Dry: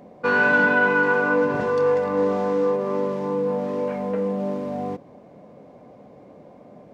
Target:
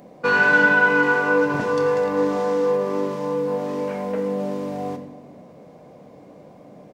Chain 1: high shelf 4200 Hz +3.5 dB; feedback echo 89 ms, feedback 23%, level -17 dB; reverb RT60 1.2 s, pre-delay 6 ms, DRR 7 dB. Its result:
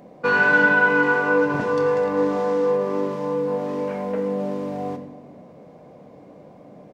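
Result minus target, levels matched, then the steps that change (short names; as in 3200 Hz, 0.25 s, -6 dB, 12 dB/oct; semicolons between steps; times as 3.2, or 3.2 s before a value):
8000 Hz band -4.5 dB
change: high shelf 4200 Hz +10.5 dB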